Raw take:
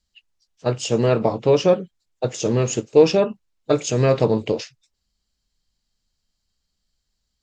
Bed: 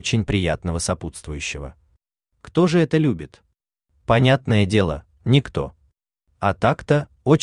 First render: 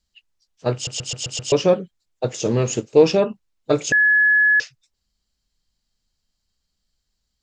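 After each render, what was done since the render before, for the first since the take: 0.74 s: stutter in place 0.13 s, 6 plays; 3.92–4.60 s: bleep 1.7 kHz -12 dBFS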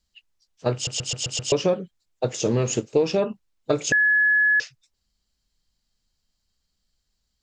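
compression 5:1, threshold -17 dBFS, peak gain reduction 9.5 dB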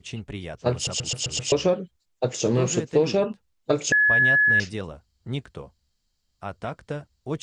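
add bed -14.5 dB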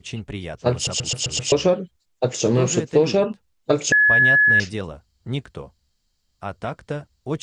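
trim +3.5 dB

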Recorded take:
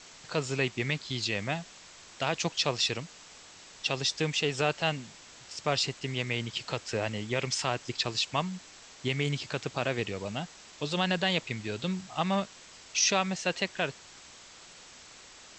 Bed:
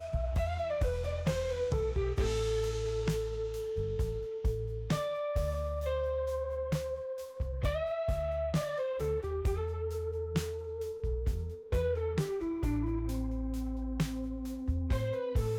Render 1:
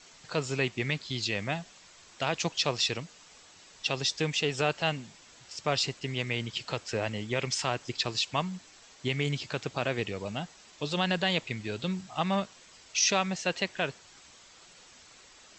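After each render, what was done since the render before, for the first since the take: noise reduction 6 dB, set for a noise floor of -52 dBFS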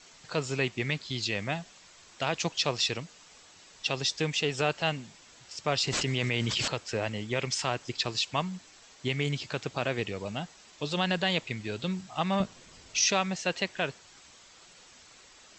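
5.87–6.68 s: level flattener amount 100%; 12.40–13.06 s: bass shelf 400 Hz +11.5 dB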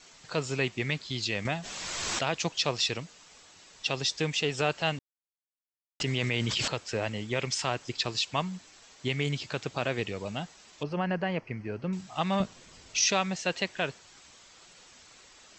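1.45–2.23 s: swell ahead of each attack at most 21 dB/s; 4.99–6.00 s: mute; 10.83–11.93 s: boxcar filter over 12 samples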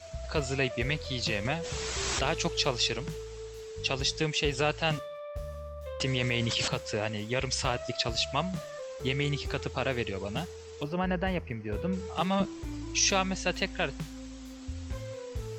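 add bed -6.5 dB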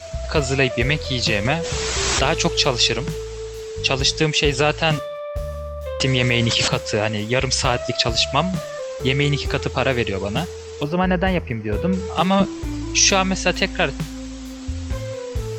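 trim +11 dB; peak limiter -3 dBFS, peak gain reduction 2.5 dB

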